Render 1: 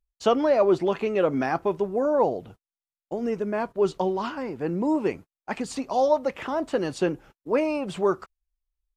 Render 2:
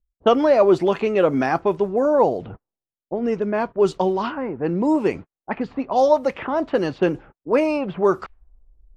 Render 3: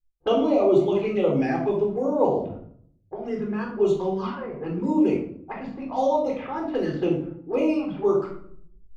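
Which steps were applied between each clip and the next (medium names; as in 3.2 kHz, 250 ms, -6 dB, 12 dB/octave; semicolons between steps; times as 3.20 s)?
level-controlled noise filter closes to 680 Hz, open at -20.5 dBFS; reverse; upward compressor, threshold -34 dBFS; reverse; level-controlled noise filter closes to 510 Hz, open at -20.5 dBFS; trim +5 dB
touch-sensitive flanger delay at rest 5.8 ms, full sweep at -15 dBFS; wow and flutter 25 cents; simulated room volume 920 m³, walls furnished, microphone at 3.9 m; trim -8.5 dB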